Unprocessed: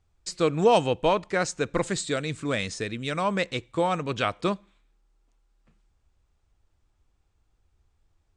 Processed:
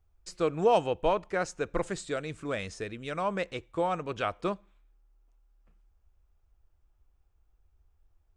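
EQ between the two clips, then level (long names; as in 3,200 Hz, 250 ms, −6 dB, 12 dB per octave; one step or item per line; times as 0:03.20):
graphic EQ with 10 bands 125 Hz −11 dB, 250 Hz −9 dB, 500 Hz −4 dB, 1,000 Hz −5 dB, 2,000 Hz −7 dB, 4,000 Hz −11 dB, 8,000 Hz −12 dB
+3.5 dB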